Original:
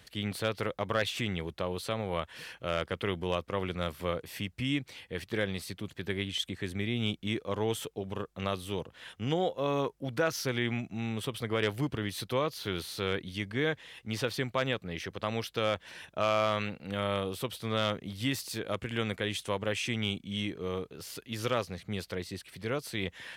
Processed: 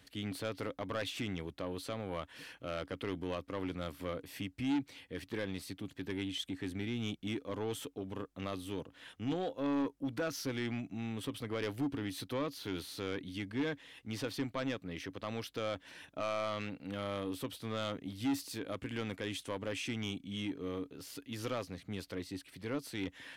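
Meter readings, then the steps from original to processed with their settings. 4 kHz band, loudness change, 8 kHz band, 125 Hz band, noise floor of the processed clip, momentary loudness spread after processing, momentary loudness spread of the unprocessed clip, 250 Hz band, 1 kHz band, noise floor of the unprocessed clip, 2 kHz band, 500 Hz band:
−8.0 dB, −6.0 dB, −5.5 dB, −7.5 dB, −64 dBFS, 7 LU, 8 LU, −2.0 dB, −8.0 dB, −61 dBFS, −8.0 dB, −7.0 dB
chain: parametric band 280 Hz +14 dB 0.21 octaves
soft clipping −23 dBFS, distortion −12 dB
level −5.5 dB

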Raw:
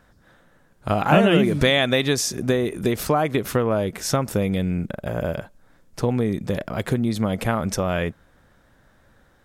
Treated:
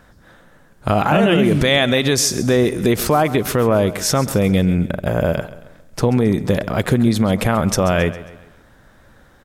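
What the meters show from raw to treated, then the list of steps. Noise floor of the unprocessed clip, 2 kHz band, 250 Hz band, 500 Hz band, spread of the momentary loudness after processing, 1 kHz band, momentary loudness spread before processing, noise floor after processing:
−58 dBFS, +4.0 dB, +5.5 dB, +5.0 dB, 7 LU, +4.5 dB, 10 LU, −50 dBFS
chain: brickwall limiter −13 dBFS, peak gain reduction 9.5 dB
repeating echo 135 ms, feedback 44%, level −16 dB
level +7.5 dB

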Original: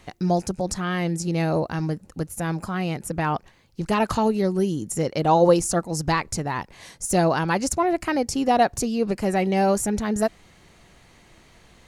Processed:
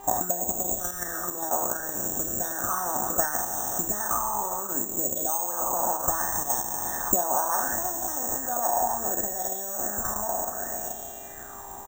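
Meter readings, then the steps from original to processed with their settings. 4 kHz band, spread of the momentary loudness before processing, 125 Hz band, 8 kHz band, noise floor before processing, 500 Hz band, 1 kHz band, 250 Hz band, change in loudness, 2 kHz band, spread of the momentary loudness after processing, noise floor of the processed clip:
−11.0 dB, 9 LU, −18.0 dB, +6.0 dB, −54 dBFS, −9.5 dB, −3.5 dB, −15.0 dB, −2.5 dB, −6.0 dB, 5 LU, −40 dBFS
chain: peak hold with a decay on every bin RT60 1.98 s
Chebyshev band-stop filter 1,800–3,600 Hz, order 4
comb filter 3.3 ms, depth 67%
on a send: flutter between parallel walls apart 5.8 metres, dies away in 0.27 s
on the sum: bad sample-rate conversion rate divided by 6×, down filtered, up zero stuff
in parallel at 0 dB: output level in coarse steps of 14 dB
on the sum: hum with harmonics 400 Hz, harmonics 29, −41 dBFS −7 dB per octave
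downward compressor 6 to 1, threshold −15 dBFS, peak gain reduction 18.5 dB
harmonic and percussive parts rebalanced harmonic −13 dB
dynamic equaliser 2,200 Hz, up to −5 dB, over −52 dBFS, Q 1.4
hollow resonant body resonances 740/2,900 Hz, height 12 dB, ringing for 45 ms
auto-filter bell 0.68 Hz 930–3,200 Hz +15 dB
level −1.5 dB

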